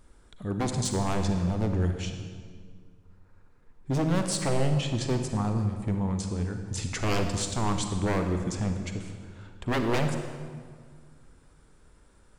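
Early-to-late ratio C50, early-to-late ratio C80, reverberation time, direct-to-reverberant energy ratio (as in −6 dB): 6.0 dB, 7.5 dB, 1.8 s, 5.5 dB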